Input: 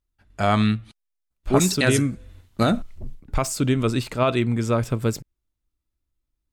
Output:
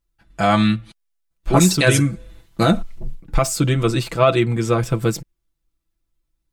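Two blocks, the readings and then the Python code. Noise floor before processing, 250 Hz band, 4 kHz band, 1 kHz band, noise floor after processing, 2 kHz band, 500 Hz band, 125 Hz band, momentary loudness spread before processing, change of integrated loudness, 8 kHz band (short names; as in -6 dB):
-81 dBFS, +3.0 dB, +4.5 dB, +4.5 dB, -76 dBFS, +4.5 dB, +4.0 dB, +4.5 dB, 9 LU, +4.0 dB, +4.5 dB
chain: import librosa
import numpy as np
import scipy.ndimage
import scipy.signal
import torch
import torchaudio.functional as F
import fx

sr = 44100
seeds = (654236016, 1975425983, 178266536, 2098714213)

y = x + 0.8 * np.pad(x, (int(6.0 * sr / 1000.0), 0))[:len(x)]
y = y * 10.0 ** (2.5 / 20.0)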